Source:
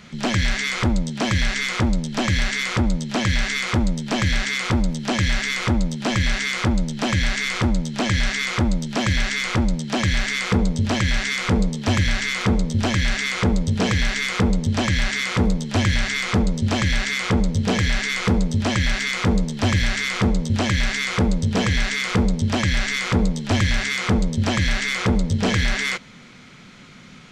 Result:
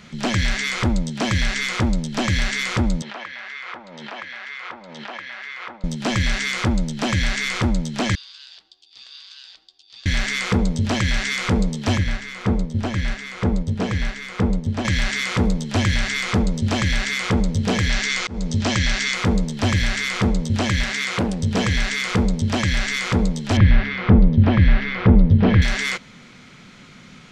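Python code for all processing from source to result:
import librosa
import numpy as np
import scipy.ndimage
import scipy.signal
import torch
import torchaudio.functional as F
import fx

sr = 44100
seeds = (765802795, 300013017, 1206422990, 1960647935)

y = fx.chain(x, sr, fx.highpass(hz=960.0, slope=12),
    fx.spacing_loss(db_at_10k=41),
    fx.pre_swell(db_per_s=37.0), at=(3.02, 5.84))
y = fx.chain(y, sr, fx.bandpass_q(hz=4100.0, q=12.0),
    fx.ring_mod(carrier_hz=550.0), at=(8.15, 10.06))
y = fx.chain(y, sr, fx.high_shelf(hz=2400.0, db=-8.5),
    fx.upward_expand(threshold_db=-27.0, expansion=1.5), at=(11.97, 14.85))
y = fx.chain(y, sr, fx.lowpass(hz=7200.0, slope=24),
    fx.high_shelf(hz=5700.0, db=9.0),
    fx.auto_swell(attack_ms=254.0), at=(17.9, 19.15))
y = fx.chain(y, sr, fx.highpass(hz=130.0, slope=6),
    fx.doppler_dist(depth_ms=0.56), at=(20.83, 21.4))
y = fx.chain(y, sr, fx.gaussian_blur(sigma=2.8),
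    fx.low_shelf(hz=340.0, db=8.5), at=(23.57, 25.62))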